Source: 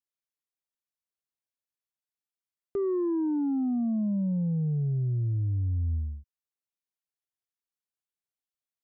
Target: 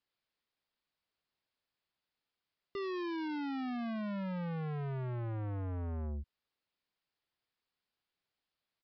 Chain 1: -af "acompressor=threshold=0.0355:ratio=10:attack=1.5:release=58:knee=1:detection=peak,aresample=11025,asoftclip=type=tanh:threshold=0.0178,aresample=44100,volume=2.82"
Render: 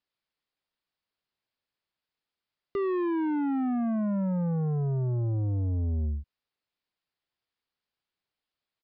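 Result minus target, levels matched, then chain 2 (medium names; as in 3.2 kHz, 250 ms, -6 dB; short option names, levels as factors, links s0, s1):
saturation: distortion -6 dB
-af "acompressor=threshold=0.0355:ratio=10:attack=1.5:release=58:knee=1:detection=peak,aresample=11025,asoftclip=type=tanh:threshold=0.00501,aresample=44100,volume=2.82"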